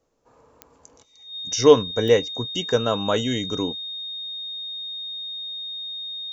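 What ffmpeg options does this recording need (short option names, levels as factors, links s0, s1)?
-af "adeclick=t=4,bandreject=f=3700:w=30"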